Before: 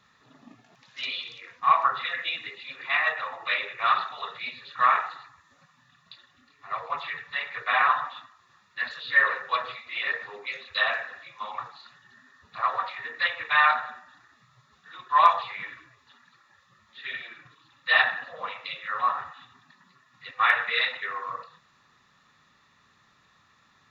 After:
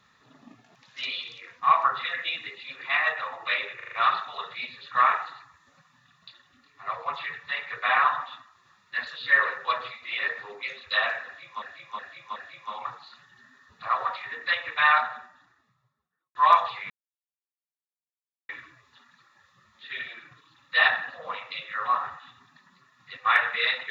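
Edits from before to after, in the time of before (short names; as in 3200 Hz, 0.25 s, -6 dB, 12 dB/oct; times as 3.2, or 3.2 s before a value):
3.76 stutter 0.04 s, 5 plays
11.09–11.46 loop, 4 plays
13.63–15.08 studio fade out
15.63 insert silence 1.59 s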